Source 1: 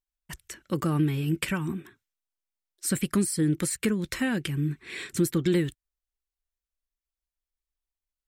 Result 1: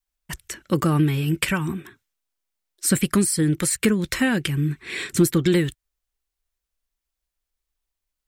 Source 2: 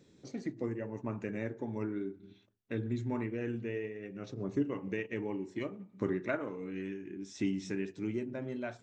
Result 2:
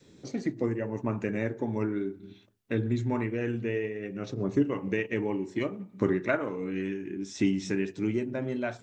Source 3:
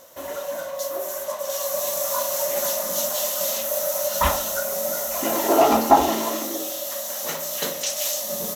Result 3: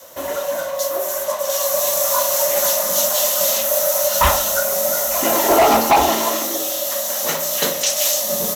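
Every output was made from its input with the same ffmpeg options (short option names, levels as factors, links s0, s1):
-af "adynamicequalizer=threshold=0.0126:dfrequency=260:dqfactor=0.84:tfrequency=260:tqfactor=0.84:attack=5:release=100:ratio=0.375:range=3.5:mode=cutabove:tftype=bell,asoftclip=type=hard:threshold=0.158,volume=2.37"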